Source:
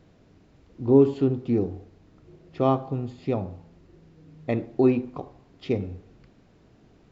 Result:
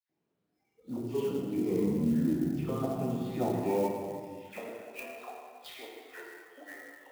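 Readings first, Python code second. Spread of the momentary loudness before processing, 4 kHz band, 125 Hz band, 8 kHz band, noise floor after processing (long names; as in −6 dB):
19 LU, −0.5 dB, −7.5 dB, can't be measured, −81 dBFS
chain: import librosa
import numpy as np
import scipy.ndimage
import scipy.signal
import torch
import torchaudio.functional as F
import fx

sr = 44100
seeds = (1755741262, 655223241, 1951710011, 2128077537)

y = fx.spec_ripple(x, sr, per_octave=0.78, drift_hz=2.1, depth_db=9)
y = fx.echo_pitch(y, sr, ms=89, semitones=-5, count=3, db_per_echo=-6.0)
y = fx.low_shelf(y, sr, hz=90.0, db=5.0)
y = fx.over_compress(y, sr, threshold_db=-23.0, ratio=-0.5)
y = fx.filter_sweep_highpass(y, sr, from_hz=220.0, to_hz=990.0, start_s=3.43, end_s=4.82, q=0.89)
y = fx.dispersion(y, sr, late='lows', ms=96.0, hz=2100.0)
y = fx.noise_reduce_blind(y, sr, reduce_db=23)
y = fx.rev_plate(y, sr, seeds[0], rt60_s=1.7, hf_ratio=0.95, predelay_ms=0, drr_db=-2.5)
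y = fx.clock_jitter(y, sr, seeds[1], jitter_ms=0.023)
y = y * 10.0 ** (-7.5 / 20.0)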